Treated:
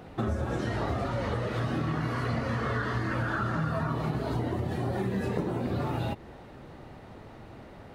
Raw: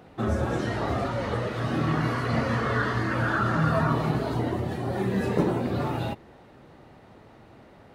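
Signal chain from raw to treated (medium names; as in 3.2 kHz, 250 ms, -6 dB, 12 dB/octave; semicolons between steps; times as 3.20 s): bass shelf 70 Hz +8.5 dB; compression, threshold -30 dBFS, peak gain reduction 13.5 dB; trim +3 dB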